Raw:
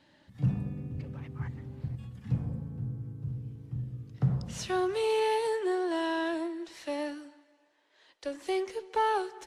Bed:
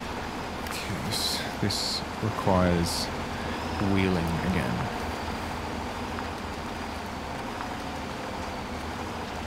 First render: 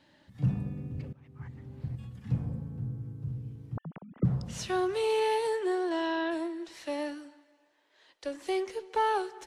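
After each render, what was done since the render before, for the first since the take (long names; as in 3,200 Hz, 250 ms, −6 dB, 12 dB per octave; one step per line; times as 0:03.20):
0:01.13–0:01.92: fade in, from −20.5 dB
0:03.77–0:04.25: three sine waves on the formant tracks
0:05.89–0:06.30: low-pass filter 8,300 Hz → 4,300 Hz 24 dB per octave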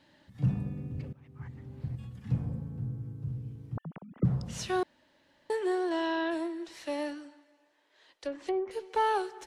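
0:04.83–0:05.50: fill with room tone
0:07.11–0:08.71: treble cut that deepens with the level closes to 810 Hz, closed at −27 dBFS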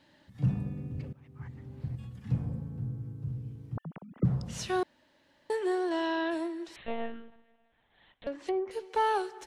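0:06.76–0:08.27: one-pitch LPC vocoder at 8 kHz 230 Hz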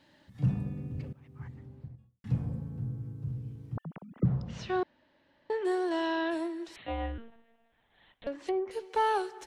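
0:01.35–0:02.24: fade out and dull
0:04.22–0:05.65: high-frequency loss of the air 190 metres
0:06.78–0:07.18: frequency shifter +69 Hz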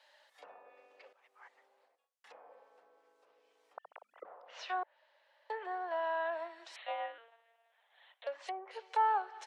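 treble cut that deepens with the level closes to 1,400 Hz, closed at −27 dBFS
Butterworth high-pass 550 Hz 36 dB per octave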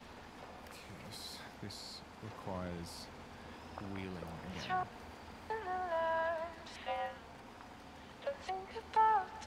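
mix in bed −19.5 dB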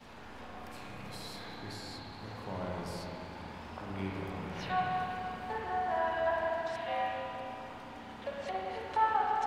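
spring reverb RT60 3.1 s, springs 31/47/55 ms, chirp 25 ms, DRR −4 dB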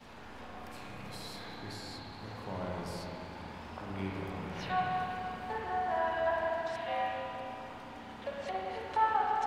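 no processing that can be heard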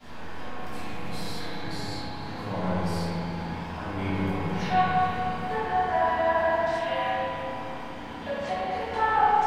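rectangular room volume 330 cubic metres, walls mixed, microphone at 3.1 metres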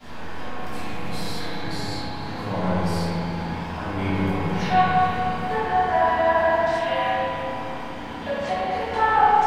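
level +4.5 dB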